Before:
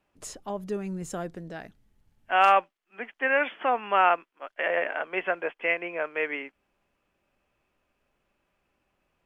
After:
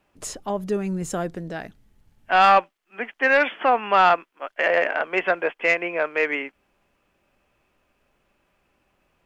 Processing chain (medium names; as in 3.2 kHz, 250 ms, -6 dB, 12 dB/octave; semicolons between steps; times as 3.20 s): saturation -14 dBFS, distortion -15 dB; trim +7 dB